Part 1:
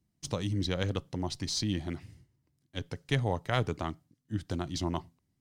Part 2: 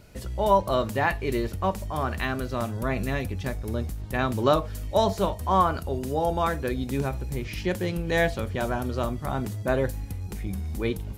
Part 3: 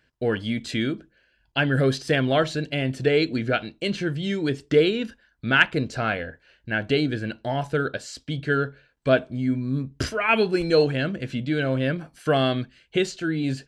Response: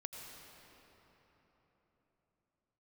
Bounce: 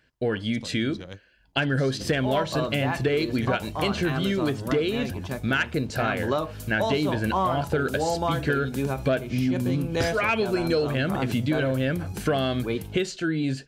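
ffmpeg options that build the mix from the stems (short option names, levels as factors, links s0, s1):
-filter_complex "[0:a]adelay=300,volume=0.299[s0];[1:a]highpass=93,bandreject=f=1900:w=7.7,adelay=1850,volume=0.794[s1];[2:a]volume=1.12,asplit=2[s2][s3];[s3]apad=whole_len=251503[s4];[s0][s4]sidechaingate=range=0.0224:threshold=0.00282:ratio=16:detection=peak[s5];[s5][s1][s2]amix=inputs=3:normalize=0,dynaudnorm=f=190:g=13:m=3.76,asoftclip=type=tanh:threshold=0.631,acompressor=threshold=0.0891:ratio=6"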